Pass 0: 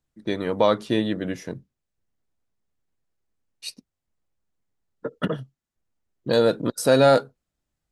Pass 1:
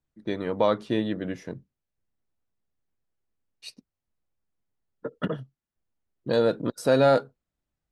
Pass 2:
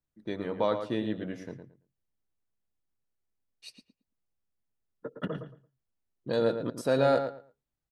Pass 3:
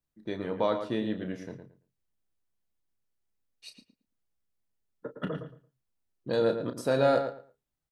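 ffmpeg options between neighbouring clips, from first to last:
ffmpeg -i in.wav -af "aemphasis=mode=reproduction:type=cd,volume=-3.5dB" out.wav
ffmpeg -i in.wav -filter_complex "[0:a]asplit=2[link_01][link_02];[link_02]adelay=112,lowpass=frequency=3100:poles=1,volume=-8dB,asplit=2[link_03][link_04];[link_04]adelay=112,lowpass=frequency=3100:poles=1,volume=0.2,asplit=2[link_05][link_06];[link_06]adelay=112,lowpass=frequency=3100:poles=1,volume=0.2[link_07];[link_01][link_03][link_05][link_07]amix=inputs=4:normalize=0,volume=-5.5dB" out.wav
ffmpeg -i in.wav -filter_complex "[0:a]asplit=2[link_01][link_02];[link_02]adelay=32,volume=-9.5dB[link_03];[link_01][link_03]amix=inputs=2:normalize=0" out.wav

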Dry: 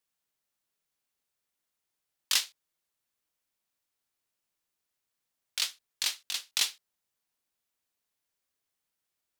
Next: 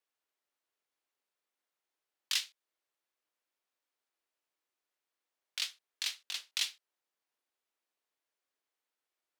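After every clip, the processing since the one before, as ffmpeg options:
ffmpeg -i in.wav -filter_complex "[0:a]highpass=frequency=290:width=0.5412,highpass=frequency=290:width=1.3066,highshelf=frequency=4900:gain=-11.5,acrossover=split=1800[link_01][link_02];[link_01]acompressor=threshold=-55dB:ratio=6[link_03];[link_03][link_02]amix=inputs=2:normalize=0" out.wav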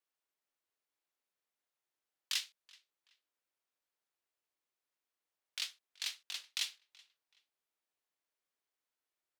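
ffmpeg -i in.wav -filter_complex "[0:a]asplit=2[link_01][link_02];[link_02]adelay=378,lowpass=frequency=4400:poles=1,volume=-23dB,asplit=2[link_03][link_04];[link_04]adelay=378,lowpass=frequency=4400:poles=1,volume=0.34[link_05];[link_01][link_03][link_05]amix=inputs=3:normalize=0,volume=-3.5dB" out.wav

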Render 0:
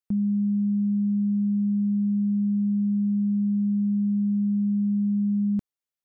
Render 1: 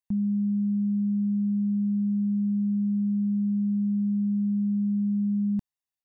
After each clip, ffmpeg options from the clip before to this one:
ffmpeg -i in.wav -af "aecho=1:1:1.1:0.65,volume=-4dB" out.wav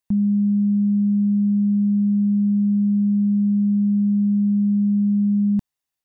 ffmpeg -i in.wav -af "acontrast=54,volume=1dB" out.wav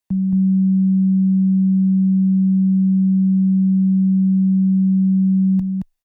ffmpeg -i in.wav -af "afreqshift=-14,aecho=1:1:222:0.708" out.wav

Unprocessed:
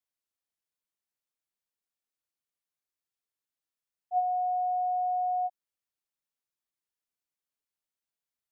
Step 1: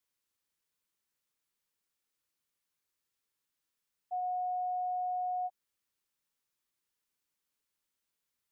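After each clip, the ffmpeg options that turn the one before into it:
ffmpeg -i in.wav -af "equalizer=frequency=690:width_type=o:width=0.25:gain=-9.5,alimiter=level_in=13dB:limit=-24dB:level=0:latency=1:release=132,volume=-13dB,volume=6dB" out.wav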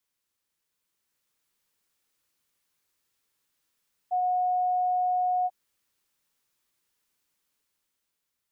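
ffmpeg -i in.wav -af "dynaudnorm=framelen=240:gausssize=9:maxgain=5.5dB,volume=3dB" out.wav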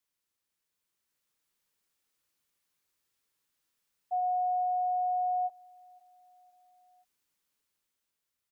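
ffmpeg -i in.wav -af "aecho=1:1:517|1034|1551:0.0708|0.0354|0.0177,volume=-3.5dB" out.wav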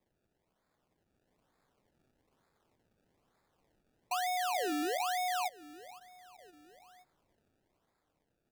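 ffmpeg -i in.wav -af "acrusher=samples=29:mix=1:aa=0.000001:lfo=1:lforange=29:lforate=1.1,acompressor=threshold=-40dB:ratio=3,volume=4.5dB" out.wav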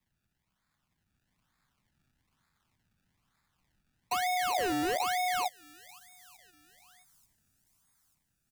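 ffmpeg -i in.wav -filter_complex "[0:a]acrossover=split=240|940|5900[link_01][link_02][link_03][link_04];[link_02]acrusher=bits=5:mix=0:aa=0.5[link_05];[link_04]aecho=1:1:889|1778|2667|3556:0.158|0.0729|0.0335|0.0154[link_06];[link_01][link_05][link_03][link_06]amix=inputs=4:normalize=0,volume=3dB" out.wav

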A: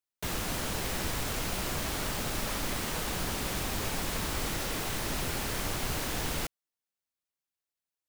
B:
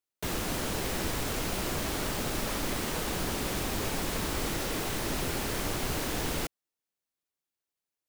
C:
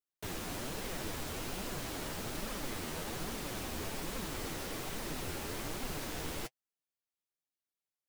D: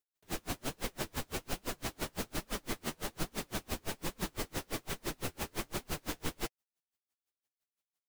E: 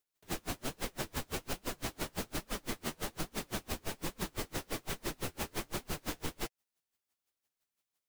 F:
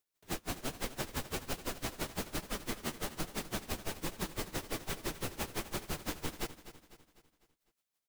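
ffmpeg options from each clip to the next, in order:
ffmpeg -i in.wav -af "equalizer=frequency=350:width=0.92:gain=4.5" out.wav
ffmpeg -i in.wav -af "flanger=delay=3.6:depth=10:regen=35:speed=1.2:shape=triangular,volume=-4dB" out.wav
ffmpeg -i in.wav -af "aeval=exprs='val(0)*pow(10,-37*(0.5-0.5*cos(2*PI*5.9*n/s))/20)':channel_layout=same,volume=7dB" out.wav
ffmpeg -i in.wav -af "acompressor=threshold=-38dB:ratio=6,volume=4.5dB" out.wav
ffmpeg -i in.wav -af "aecho=1:1:250|500|750|1000|1250:0.2|0.0958|0.046|0.0221|0.0106" out.wav

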